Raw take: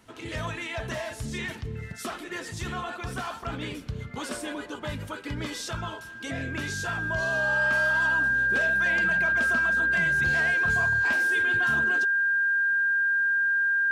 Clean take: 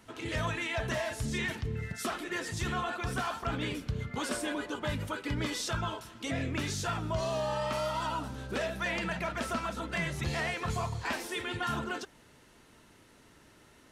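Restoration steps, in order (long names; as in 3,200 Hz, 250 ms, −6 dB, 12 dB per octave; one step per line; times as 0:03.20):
notch filter 1,600 Hz, Q 30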